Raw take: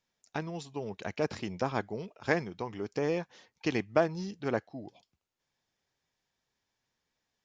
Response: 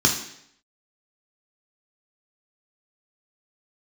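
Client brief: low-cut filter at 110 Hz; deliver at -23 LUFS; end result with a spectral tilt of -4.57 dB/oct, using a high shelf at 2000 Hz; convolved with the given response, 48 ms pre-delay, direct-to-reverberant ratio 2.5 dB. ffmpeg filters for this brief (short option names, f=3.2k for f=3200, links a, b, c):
-filter_complex "[0:a]highpass=110,highshelf=f=2k:g=-4.5,asplit=2[a][b];[1:a]atrim=start_sample=2205,adelay=48[c];[b][c]afir=irnorm=-1:irlink=0,volume=-18dB[d];[a][d]amix=inputs=2:normalize=0,volume=8.5dB"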